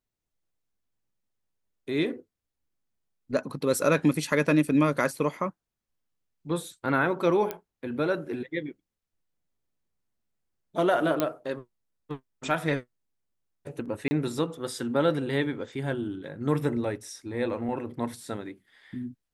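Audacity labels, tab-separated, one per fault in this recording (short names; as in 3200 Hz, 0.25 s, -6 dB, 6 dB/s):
7.510000	7.510000	pop -16 dBFS
11.200000	11.200000	pop -10 dBFS
14.080000	14.110000	gap 30 ms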